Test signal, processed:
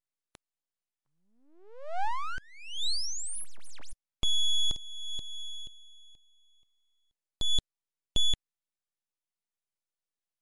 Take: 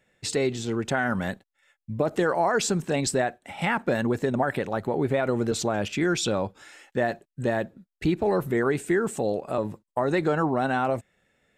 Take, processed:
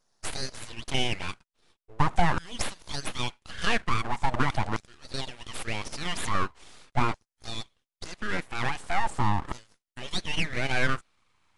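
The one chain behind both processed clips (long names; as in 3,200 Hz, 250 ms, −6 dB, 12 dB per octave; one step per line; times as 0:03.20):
auto-filter high-pass saw down 0.42 Hz 270–3,200 Hz
full-wave rectification
MP3 96 kbit/s 24,000 Hz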